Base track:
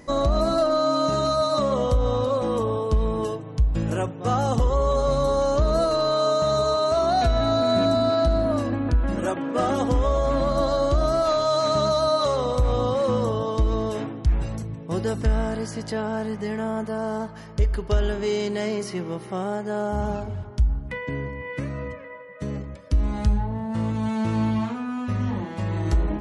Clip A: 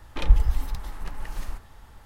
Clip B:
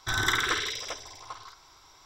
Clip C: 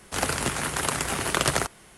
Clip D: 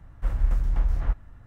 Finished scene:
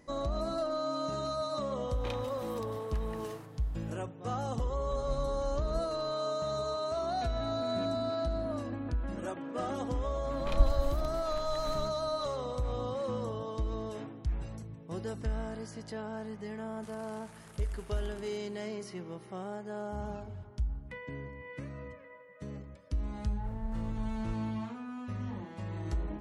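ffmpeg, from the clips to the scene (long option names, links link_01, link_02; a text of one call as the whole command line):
ffmpeg -i bed.wav -i cue0.wav -i cue1.wav -i cue2.wav -i cue3.wav -filter_complex "[1:a]asplit=2[link_01][link_02];[4:a]asplit=2[link_03][link_04];[0:a]volume=-12.5dB[link_05];[link_01]highpass=300[link_06];[link_03]lowpass=frequency=1700:width=0.5412,lowpass=frequency=1700:width=1.3066[link_07];[3:a]acompressor=threshold=-36dB:ratio=6:attack=3.2:release=140:knee=1:detection=peak[link_08];[link_06]atrim=end=2.05,asetpts=PTS-STARTPTS,volume=-8dB,afade=type=in:duration=0.004:curve=hsin,afade=type=out:start_time=2.046:duration=0.004:curve=hsin,adelay=1880[link_09];[link_07]atrim=end=1.46,asetpts=PTS-STARTPTS,volume=-16dB,afade=type=in:duration=0.004:curve=hsin,afade=type=out:start_time=1.456:duration=0.004:curve=hsin,adelay=4670[link_10];[link_02]atrim=end=2.05,asetpts=PTS-STARTPTS,volume=-8dB,afade=type=in:duration=0.004:curve=hsin,afade=type=out:start_time=2.046:duration=0.004:curve=hsin,adelay=10300[link_11];[link_08]atrim=end=1.97,asetpts=PTS-STARTPTS,volume=-17.5dB,afade=type=in:duration=0.004:curve=hsin,afade=type=out:start_time=1.966:duration=0.004:curve=hsin,adelay=16710[link_12];[link_04]atrim=end=1.46,asetpts=PTS-STARTPTS,volume=-15.5dB,afade=type=in:duration=0.004:curve=hsin,afade=type=out:start_time=1.456:duration=0.004:curve=hsin,adelay=23210[link_13];[link_05][link_09][link_10][link_11][link_12][link_13]amix=inputs=6:normalize=0" out.wav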